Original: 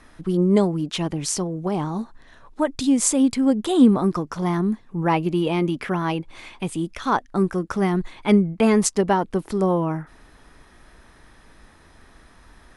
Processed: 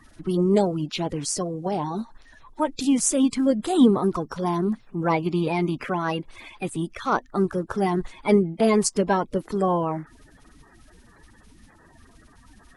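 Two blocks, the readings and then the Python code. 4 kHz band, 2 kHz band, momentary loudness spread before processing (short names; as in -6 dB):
-2.0 dB, -1.5 dB, 10 LU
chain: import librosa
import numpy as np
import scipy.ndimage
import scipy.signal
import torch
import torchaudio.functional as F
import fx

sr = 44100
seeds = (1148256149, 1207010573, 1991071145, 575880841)

y = fx.spec_quant(x, sr, step_db=30)
y = y * 10.0 ** (-1.5 / 20.0)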